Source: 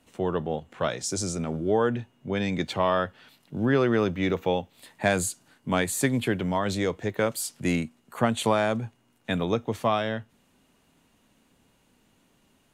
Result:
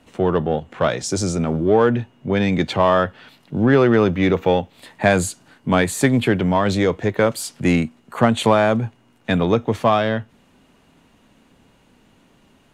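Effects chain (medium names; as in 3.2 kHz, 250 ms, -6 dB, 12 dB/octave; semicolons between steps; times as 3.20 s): low-pass 3.6 kHz 6 dB/octave; in parallel at -6 dB: saturation -25 dBFS, distortion -8 dB; on the sum: trim +6.5 dB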